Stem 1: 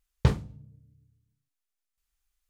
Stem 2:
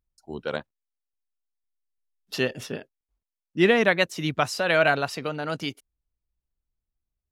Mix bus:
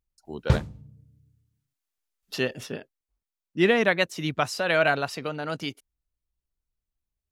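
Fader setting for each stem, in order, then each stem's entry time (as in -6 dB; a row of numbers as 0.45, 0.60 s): +1.0, -1.5 dB; 0.25, 0.00 s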